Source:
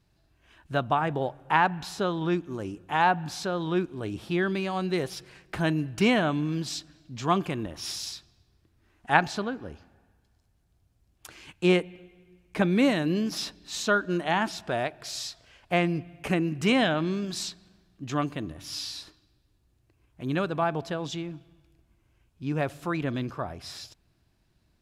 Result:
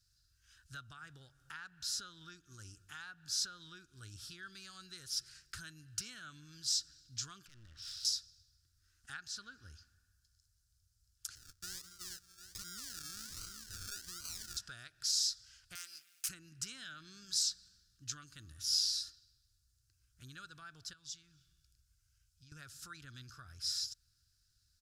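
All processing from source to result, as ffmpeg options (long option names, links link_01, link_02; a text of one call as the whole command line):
ffmpeg -i in.wav -filter_complex "[0:a]asettb=1/sr,asplit=3[link_01][link_02][link_03];[link_01]atrim=end=7.464[link_04];[link_02]atrim=start=7.46:end=8.05,asetpts=PTS-STARTPTS,afade=type=in:duration=0.004:curve=qsin,afade=type=out:start_time=0.586:duration=0.004:curve=qsin,lowpass=frequency=3400:width=0.5412,lowpass=frequency=3400:width=1.3066,acompressor=threshold=-39dB:ratio=2.5:attack=3.2:release=140:knee=1:detection=peak,aeval=exprs='clip(val(0),-1,0.00473)':channel_layout=same[link_05];[link_03]atrim=start=8.046[link_06];[link_04][link_05]acrossfade=duration=0.004:curve1=hsin:curve2=qsin[link_07];[link_07][link_06]acrossfade=duration=0.004:curve1=qsin:curve2=hsin,asettb=1/sr,asplit=3[link_08][link_09][link_10];[link_08]atrim=end=11.354[link_11];[link_09]atrim=start=11.35:end=14.57,asetpts=PTS-STARTPTS,afade=type=in:duration=0.004:curve=qsin,afade=type=out:start_time=3.216:duration=0.004:curve=qsin,aecho=1:1:369|738:0.211|0.0444,atrim=end_sample=142002,acompressor=threshold=-32dB:ratio=5:attack=3.2:release=140:knee=1:detection=peak,acrusher=samples=35:mix=1:aa=0.000001:lfo=1:lforange=21:lforate=1.3[link_12];[link_10]atrim=start=14.566[link_13];[link_11][link_12]acrossfade=duration=0.004:curve1=hsin:curve2=qsin[link_14];[link_14][link_13]acrossfade=duration=0.004:curve1=qsin:curve2=hsin,asettb=1/sr,asplit=3[link_15][link_16][link_17];[link_15]atrim=end=15.754[link_18];[link_16]atrim=start=15.75:end=16.29,asetpts=PTS-STARTPTS,afade=type=in:duration=0.004:curve=qsin,afade=type=out:start_time=0.536:duration=0.004:curve=qsin,aeval=exprs='if(lt(val(0),0),0.447*val(0),val(0))':channel_layout=same,highpass=790,aemphasis=mode=production:type=75fm[link_19];[link_17]atrim=start=16.286[link_20];[link_18][link_19]acrossfade=duration=0.004:curve1=hsin:curve2=qsin[link_21];[link_21][link_20]acrossfade=duration=0.004:curve1=qsin:curve2=hsin,asettb=1/sr,asplit=3[link_22][link_23][link_24];[link_22]atrim=end=20.934[link_25];[link_23]atrim=start=20.93:end=22.52,asetpts=PTS-STARTPTS,afade=type=in:duration=0.004:curve=qsin,afade=type=out:start_time=1.586:duration=0.004:curve=qsin,equalizer=frequency=490:width=1.1:gain=-11.5,acompressor=threshold=-44dB:ratio=4:attack=3.2:release=140:knee=1:detection=peak[link_26];[link_24]atrim=start=22.516[link_27];[link_25][link_26]acrossfade=duration=0.004:curve1=hsin:curve2=qsin[link_28];[link_28][link_27]acrossfade=duration=0.004:curve1=qsin:curve2=hsin,acompressor=threshold=-33dB:ratio=4,firequalizer=gain_entry='entry(100,0);entry(170,-15);entry(630,-26);entry(910,-24);entry(1400,4);entry(2100,-9);entry(5000,15);entry(12000,9)':delay=0.05:min_phase=1,volume=-8dB" out.wav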